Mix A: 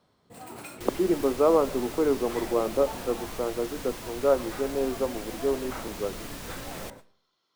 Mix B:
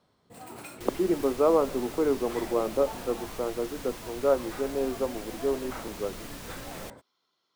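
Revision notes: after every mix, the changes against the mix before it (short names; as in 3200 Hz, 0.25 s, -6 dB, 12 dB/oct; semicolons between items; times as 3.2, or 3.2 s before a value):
reverb: off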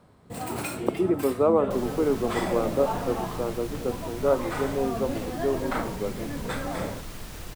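first sound +10.5 dB; second sound: entry +0.90 s; master: add low shelf 180 Hz +7.5 dB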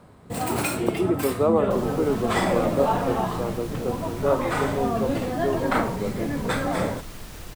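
first sound +6.5 dB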